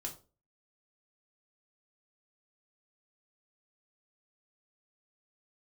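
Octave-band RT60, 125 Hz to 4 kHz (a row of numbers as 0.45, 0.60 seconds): 0.45, 0.40, 0.40, 0.30, 0.25, 0.25 seconds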